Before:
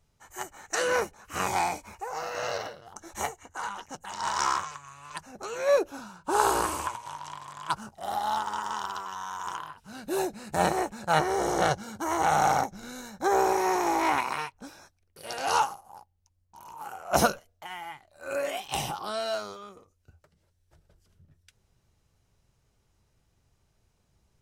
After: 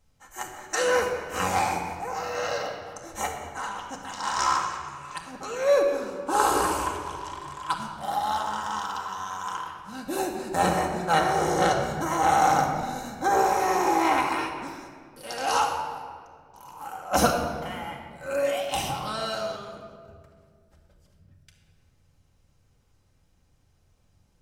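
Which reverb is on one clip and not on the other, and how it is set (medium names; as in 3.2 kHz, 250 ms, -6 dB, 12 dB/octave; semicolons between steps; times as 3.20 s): simulated room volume 3100 m³, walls mixed, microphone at 2.1 m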